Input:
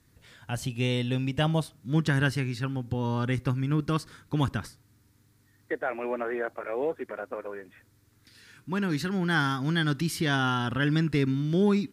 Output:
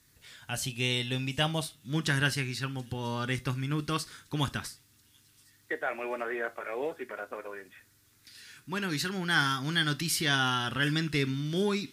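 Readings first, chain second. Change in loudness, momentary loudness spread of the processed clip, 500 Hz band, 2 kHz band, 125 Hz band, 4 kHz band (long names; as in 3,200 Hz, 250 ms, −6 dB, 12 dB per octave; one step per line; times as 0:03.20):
−2.5 dB, 13 LU, −4.5 dB, +1.0 dB, −5.5 dB, +4.5 dB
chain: tilt shelving filter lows −6 dB, about 1,500 Hz
delay with a high-pass on its return 732 ms, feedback 67%, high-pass 4,900 Hz, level −21 dB
reverb whose tail is shaped and stops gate 90 ms falling, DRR 10.5 dB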